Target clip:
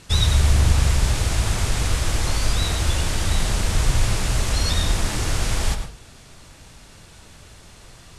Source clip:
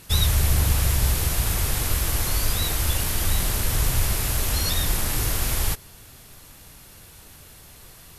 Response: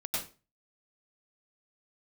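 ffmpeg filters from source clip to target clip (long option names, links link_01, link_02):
-filter_complex "[0:a]lowpass=frequency=8600:width=0.5412,lowpass=frequency=8600:width=1.3066,asplit=2[link_01][link_02];[link_02]highshelf=frequency=4000:gain=-11[link_03];[1:a]atrim=start_sample=2205,highshelf=frequency=8200:gain=9.5[link_04];[link_03][link_04]afir=irnorm=-1:irlink=0,volume=-7.5dB[link_05];[link_01][link_05]amix=inputs=2:normalize=0"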